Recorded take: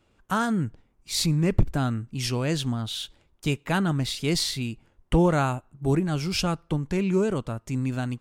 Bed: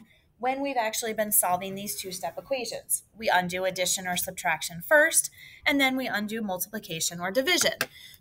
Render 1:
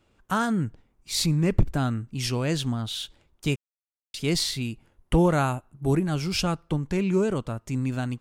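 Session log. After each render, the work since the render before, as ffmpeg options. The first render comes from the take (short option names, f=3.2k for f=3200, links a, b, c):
-filter_complex "[0:a]asettb=1/sr,asplit=3[a][b][c];[a]atrim=end=4.654[d];[b]atrim=start=4.65:end=6.15,asetpts=PTS-STARTPTS,afade=t=in:d=0.004:c=qsin,afade=t=out:st=1.496:d=0.004:c=qsin,equalizer=f=11k:w=5.9:g=11.5[e];[c]atrim=start=6.146[f];[d][e]acrossfade=d=0.004:c1=hsin:c2=qsin[g];[g][f]acrossfade=d=0.004:c1=qsin:c2=hsin,asplit=3[h][i][j];[h]atrim=end=3.56,asetpts=PTS-STARTPTS,afade=t=out:st=3.556:d=0.004:c=hsin[k];[i]atrim=start=3.56:end=4.14,asetpts=PTS-STARTPTS,volume=0[l];[j]atrim=start=4.14,asetpts=PTS-STARTPTS,afade=t=in:d=0.004:c=hsin[m];[k][l][m]concat=n=3:v=0:a=1"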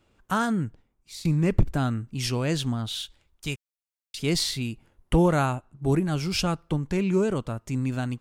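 -filter_complex "[0:a]asettb=1/sr,asplit=3[a][b][c];[a]atrim=end=3.014[d];[b]atrim=start=3.01:end=4.18,asetpts=PTS-STARTPTS,afade=t=in:d=0.004:c=qsin,afade=t=out:st=1.166:d=0.004:c=qsin,equalizer=f=320:w=0.31:g=-8.5[e];[c]atrim=start=4.176[f];[d][e]acrossfade=d=0.004:c1=hsin:c2=qsin[g];[g][f]acrossfade=d=0.004:c1=qsin:c2=hsin,asettb=1/sr,asplit=3[h][i][j];[h]atrim=end=5.464[k];[i]atrim=start=5.46:end=5.92,asetpts=PTS-STARTPTS,afade=t=in:d=0.004:c=qsin,afade=t=out:st=0.456:d=0.004:c=qsin,lowpass=8.1k[l];[j]atrim=start=5.916[m];[k][l]acrossfade=d=0.004:c1=hsin:c2=qsin[n];[n][m]acrossfade=d=0.004:c1=qsin:c2=hsin,asplit=2[o][p];[o]atrim=end=1.25,asetpts=PTS-STARTPTS,afade=t=out:st=0.49:d=0.76:silence=0.11885[q];[p]atrim=start=1.25,asetpts=PTS-STARTPTS,afade=t=in:d=0.004:c=hsin:silence=0.11885[r];[q][r]concat=n=2:v=0:a=1"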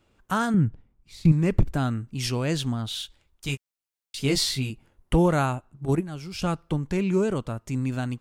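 -filter_complex "[0:a]asettb=1/sr,asplit=3[a][b][c];[a]atrim=end=0.544[d];[b]atrim=start=0.54:end=1.32,asetpts=PTS-STARTPTS,afade=t=in:d=0.004:c=qsin,afade=t=out:st=0.776:d=0.004:c=qsin,bass=f=250:g=9,treble=f=4k:g=-9[e];[c]atrim=start=1.316[f];[d][e]acrossfade=d=0.004:c1=hsin:c2=qsin[g];[g][f]acrossfade=d=0.004:c1=qsin:c2=hsin,asettb=1/sr,asplit=3[h][i][j];[h]atrim=end=3.474[k];[i]atrim=start=3.47:end=4.7,asetpts=PTS-STARTPTS,afade=t=in:d=0.004:c=qsin,afade=t=out:st=1.226:d=0.004:c=qsin,asplit=2[l][m];[m]adelay=15,volume=-3.5dB[n];[l][n]amix=inputs=2:normalize=0,atrim=end_sample=54243[o];[j]atrim=start=4.696[p];[k][o]acrossfade=d=0.004:c1=hsin:c2=qsin[q];[q][p]acrossfade=d=0.004:c1=qsin:c2=hsin,asettb=1/sr,asplit=3[r][s][t];[r]atrim=end=5.854[u];[s]atrim=start=5.85:end=6.42,asetpts=PTS-STARTPTS,afade=t=in:d=0.004:c=qsin,afade=t=out:st=0.566:d=0.004:c=qsin,agate=range=-9dB:threshold=-23dB:ratio=16:release=100:detection=peak[v];[t]atrim=start=6.416[w];[u][v]acrossfade=d=0.004:c1=hsin:c2=qsin[x];[x][w]acrossfade=d=0.004:c1=qsin:c2=hsin"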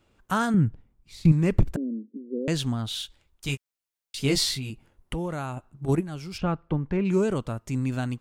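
-filter_complex "[0:a]asettb=1/sr,asplit=3[a][b][c];[a]atrim=end=1.764[d];[b]atrim=start=1.76:end=2.48,asetpts=PTS-STARTPTS,afade=t=in:d=0.004:c=qsin,afade=t=out:st=0.716:d=0.004:c=qsin,asuperpass=centerf=340:order=20:qfactor=1[e];[c]atrim=start=2.476[f];[d][e]acrossfade=d=0.004:c1=hsin:c2=qsin[g];[g][f]acrossfade=d=0.004:c1=qsin:c2=hsin,asettb=1/sr,asplit=3[h][i][j];[h]atrim=end=4.544[k];[i]atrim=start=4.54:end=5.57,asetpts=PTS-STARTPTS,afade=t=in:d=0.004:c=qsin,afade=t=out:st=1.026:d=0.004:c=qsin,acompressor=threshold=-30dB:ratio=3:attack=3.2:release=140:knee=1:detection=peak[l];[j]atrim=start=5.566[m];[k][l]acrossfade=d=0.004:c1=hsin:c2=qsin[n];[n][m]acrossfade=d=0.004:c1=qsin:c2=hsin,asplit=3[o][p][q];[o]afade=t=out:st=6.37:d=0.02[r];[p]lowpass=2.1k,afade=t=in:st=6.37:d=0.02,afade=t=out:st=7.04:d=0.02[s];[q]afade=t=in:st=7.04:d=0.02[t];[r][s][t]amix=inputs=3:normalize=0"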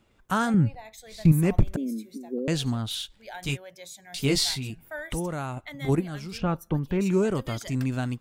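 -filter_complex "[1:a]volume=-17.5dB[a];[0:a][a]amix=inputs=2:normalize=0"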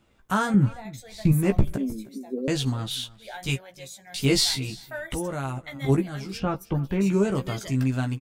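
-filter_complex "[0:a]asplit=2[a][b];[b]adelay=15,volume=-5dB[c];[a][c]amix=inputs=2:normalize=0,aecho=1:1:311:0.0891"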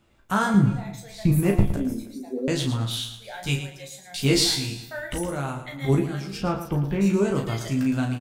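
-filter_complex "[0:a]asplit=2[a][b];[b]adelay=35,volume=-6dB[c];[a][c]amix=inputs=2:normalize=0,asplit=2[d][e];[e]aecho=0:1:112|224|336:0.316|0.0791|0.0198[f];[d][f]amix=inputs=2:normalize=0"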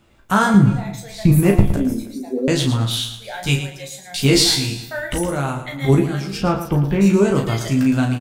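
-af "volume=7dB,alimiter=limit=-3dB:level=0:latency=1"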